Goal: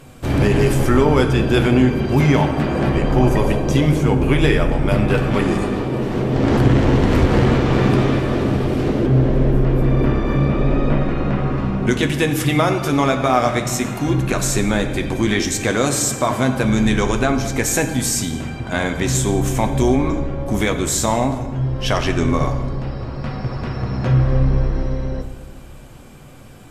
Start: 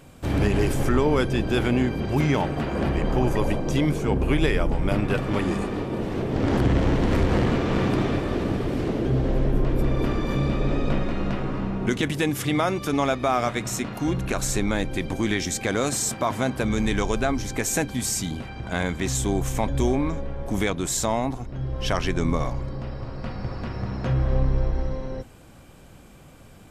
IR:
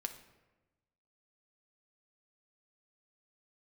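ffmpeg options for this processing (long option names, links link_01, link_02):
-filter_complex "[1:a]atrim=start_sample=2205,asetrate=28224,aresample=44100[link_01];[0:a][link_01]afir=irnorm=-1:irlink=0,asettb=1/sr,asplit=3[link_02][link_03][link_04];[link_02]atrim=end=9.064[link_05];[link_03]atrim=start=9.06:end=11.58,asetpts=PTS-STARTPTS,afade=type=in:duration=0.004:curve=qsin,afade=type=out:start_time=2.516:duration=0.004:curve=qsin,acrossover=split=2700[link_06][link_07];[link_07]acompressor=threshold=-53dB:ratio=4:attack=1:release=60[link_08];[link_06][link_08]amix=inputs=2:normalize=0[link_09];[link_04]atrim=start=11.576[link_10];[link_05][link_09]acrossfade=duration=0.004:curve1=hsin:curve2=qsin[link_11];[link_11][link_10]acrossfade=duration=0.004:curve1=qsin:curve2=hsin,volume=5dB"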